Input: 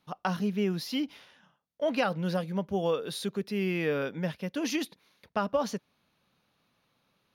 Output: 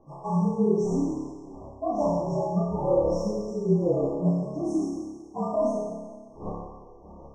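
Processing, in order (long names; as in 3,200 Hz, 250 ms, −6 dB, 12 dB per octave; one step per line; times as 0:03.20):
partials spread apart or drawn together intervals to 113%
wind on the microphone 600 Hz −48 dBFS
linear-phase brick-wall band-stop 1,200–5,300 Hz
high-frequency loss of the air 130 metres
flutter between parallel walls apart 4.9 metres, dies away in 1.4 s
string-ensemble chorus
level +4.5 dB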